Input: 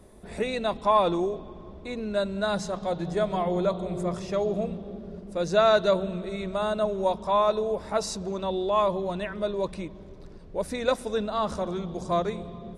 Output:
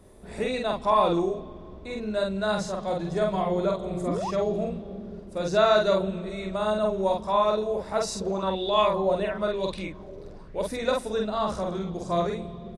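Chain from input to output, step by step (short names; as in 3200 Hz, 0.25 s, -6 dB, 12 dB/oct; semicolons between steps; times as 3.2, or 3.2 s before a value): doubler 47 ms -2.5 dB; 4.06–4.31 painted sound rise 210–1200 Hz -29 dBFS; 8.21–10.68 LFO bell 1 Hz 460–3700 Hz +11 dB; gain -1.5 dB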